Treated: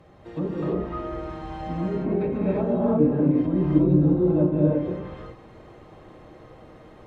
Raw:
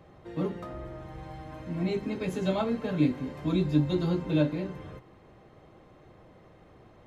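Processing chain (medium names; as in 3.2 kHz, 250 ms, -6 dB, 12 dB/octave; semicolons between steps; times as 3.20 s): low-pass that closes with the level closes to 710 Hz, closed at -26.5 dBFS; gated-style reverb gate 370 ms rising, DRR -5 dB; trim +1.5 dB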